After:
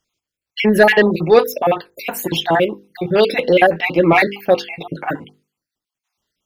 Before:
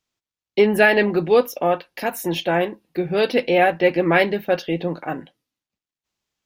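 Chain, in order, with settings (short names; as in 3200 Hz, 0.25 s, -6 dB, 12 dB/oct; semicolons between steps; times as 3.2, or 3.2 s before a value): random spectral dropouts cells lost 44%; notches 50/100/150/200/250/300/350/400/450/500 Hz; in parallel at -9 dB: sine folder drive 4 dB, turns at -5 dBFS; on the sum: gain +2 dB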